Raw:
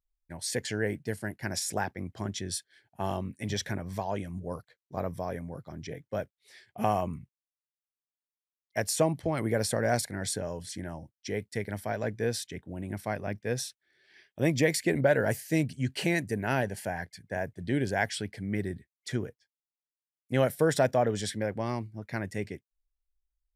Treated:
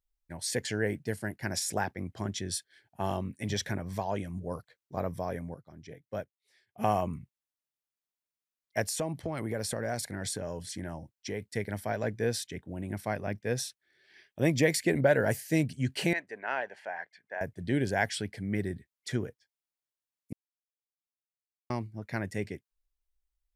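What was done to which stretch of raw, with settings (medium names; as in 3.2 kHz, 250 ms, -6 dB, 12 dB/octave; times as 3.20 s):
5.54–6.88 s: upward expansion, over -51 dBFS
8.84–11.54 s: compression 2.5:1, threshold -31 dBFS
16.13–17.41 s: band-pass 730–2400 Hz
20.33–21.70 s: mute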